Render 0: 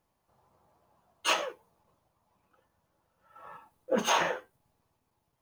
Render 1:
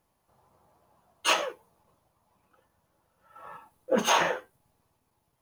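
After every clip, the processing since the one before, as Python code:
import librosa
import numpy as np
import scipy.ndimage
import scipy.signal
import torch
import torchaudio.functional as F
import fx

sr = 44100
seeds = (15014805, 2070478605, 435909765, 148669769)

y = fx.peak_eq(x, sr, hz=11000.0, db=5.5, octaves=0.3)
y = y * 10.0 ** (3.0 / 20.0)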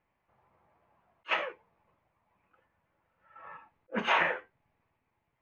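y = fx.lowpass_res(x, sr, hz=2200.0, q=3.0)
y = fx.attack_slew(y, sr, db_per_s=500.0)
y = y * 10.0 ** (-5.5 / 20.0)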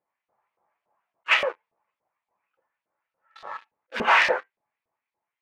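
y = fx.leveller(x, sr, passes=3)
y = fx.filter_lfo_bandpass(y, sr, shape='saw_up', hz=3.5, low_hz=460.0, high_hz=5000.0, q=1.2)
y = y * 10.0 ** (4.5 / 20.0)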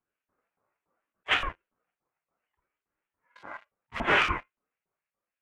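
y = fx.graphic_eq(x, sr, hz=(125, 2000, 4000, 8000), db=(12, 4, -7, 3))
y = fx.ring_lfo(y, sr, carrier_hz=410.0, swing_pct=35, hz=0.7)
y = y * 10.0 ** (-3.5 / 20.0)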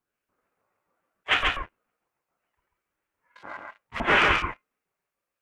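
y = x + 10.0 ** (-3.0 / 20.0) * np.pad(x, (int(136 * sr / 1000.0), 0))[:len(x)]
y = y * 10.0 ** (2.5 / 20.0)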